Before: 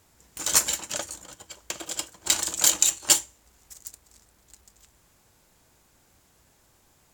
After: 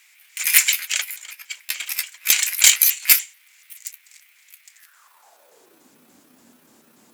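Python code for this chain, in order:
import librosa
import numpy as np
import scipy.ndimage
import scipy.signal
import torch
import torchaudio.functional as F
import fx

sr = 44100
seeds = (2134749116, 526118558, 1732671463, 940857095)

y = fx.pitch_trill(x, sr, semitones=8.5, every_ms=145)
y = fx.filter_sweep_highpass(y, sr, from_hz=2200.0, to_hz=240.0, start_s=4.71, end_s=5.91, q=4.8)
y = np.clip(10.0 ** (8.5 / 20.0) * y, -1.0, 1.0) / 10.0 ** (8.5 / 20.0)
y = y * 10.0 ** (6.5 / 20.0)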